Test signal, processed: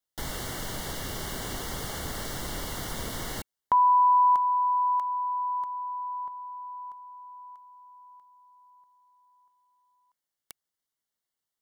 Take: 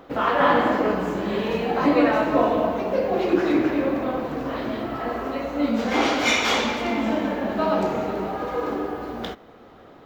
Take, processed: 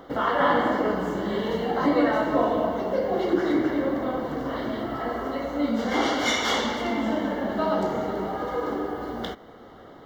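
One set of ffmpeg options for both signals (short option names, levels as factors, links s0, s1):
-filter_complex "[0:a]asplit=2[s0][s1];[s1]acompressor=threshold=0.0251:ratio=6,volume=0.794[s2];[s0][s2]amix=inputs=2:normalize=0,asuperstop=centerf=2500:order=12:qfactor=5.4,volume=0.631"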